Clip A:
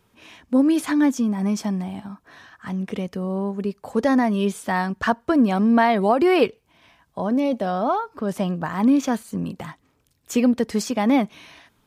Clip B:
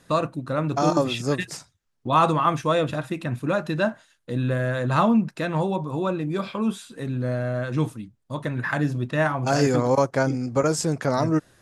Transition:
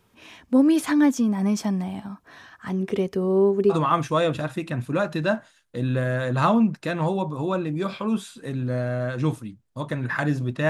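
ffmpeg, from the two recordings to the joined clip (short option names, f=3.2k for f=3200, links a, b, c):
-filter_complex "[0:a]asettb=1/sr,asplit=3[a][b][c];[a]atrim=end=2.704[d];[b]atrim=start=2.7:end=3.75,asetpts=PTS-STARTPTS,afade=t=in:d=0.004:c=qsin,afade=t=out:st=1.046:d=0.004:c=qsin,equalizer=f=390:w=7.4:g=13.5[e];[c]atrim=start=3.746[f];[d][e]acrossfade=d=0.004:c1=hsin:c2=qsin[g];[g][f]acrossfade=d=0.004:c1=qsin:c2=hsin,apad=whole_dur=10.69,atrim=end=10.69,atrim=end=3.75,asetpts=PTS-STARTPTS[h];[1:a]atrim=start=2.23:end=9.23,asetpts=PTS-STARTPTS[i];[h][i]acrossfade=d=0.06:c1=tri:c2=tri"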